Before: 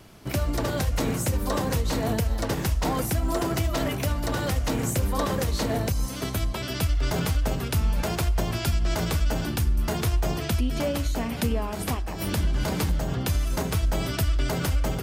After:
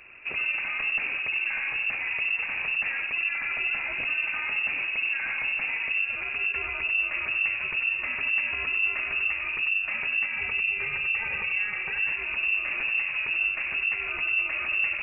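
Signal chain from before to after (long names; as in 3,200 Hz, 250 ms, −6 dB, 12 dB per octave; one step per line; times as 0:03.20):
0:10.25–0:12.06: comb filter 2.7 ms, depth 77%
brickwall limiter −21.5 dBFS, peak gain reduction 9.5 dB
soft clipping −23 dBFS, distortion −21 dB
delay with a low-pass on its return 96 ms, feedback 31%, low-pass 1,700 Hz, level −5 dB
voice inversion scrambler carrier 2,700 Hz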